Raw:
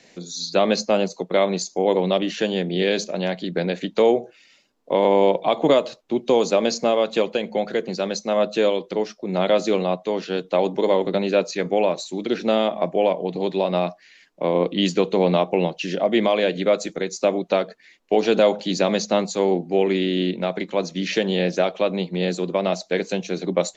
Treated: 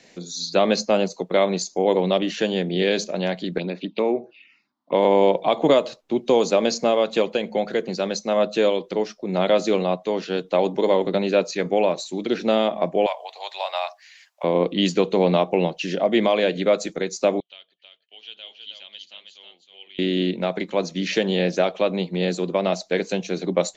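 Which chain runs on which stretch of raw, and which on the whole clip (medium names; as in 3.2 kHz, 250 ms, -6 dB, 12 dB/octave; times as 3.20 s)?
3.58–4.93 s: cabinet simulation 190–4300 Hz, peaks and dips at 490 Hz -8 dB, 730 Hz -6 dB, 1.6 kHz -7 dB, 2.6 kHz +9 dB + touch-sensitive phaser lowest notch 410 Hz, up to 3.1 kHz, full sweep at -23 dBFS
13.06–14.44 s: steep high-pass 690 Hz + treble shelf 5 kHz +8.5 dB
17.40–19.99 s: band-pass filter 3.1 kHz, Q 14 + delay 319 ms -5 dB
whole clip: none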